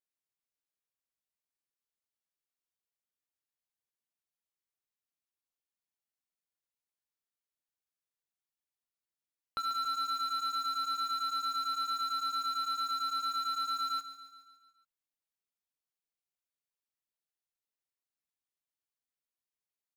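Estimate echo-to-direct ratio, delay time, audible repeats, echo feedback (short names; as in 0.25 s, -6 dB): -11.0 dB, 0.14 s, 5, 57%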